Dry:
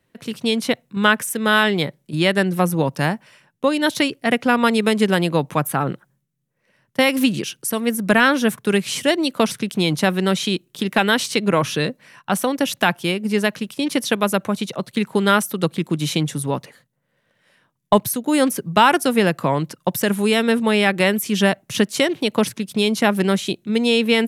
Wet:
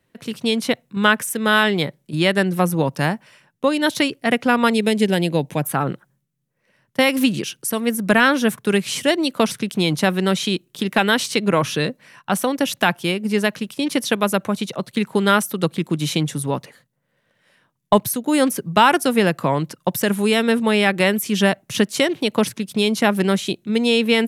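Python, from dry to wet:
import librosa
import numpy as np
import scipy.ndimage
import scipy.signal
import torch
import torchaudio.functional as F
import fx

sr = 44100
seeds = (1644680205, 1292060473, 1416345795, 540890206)

y = fx.peak_eq(x, sr, hz=1200.0, db=-15.0, octaves=0.53, at=(4.73, 5.63))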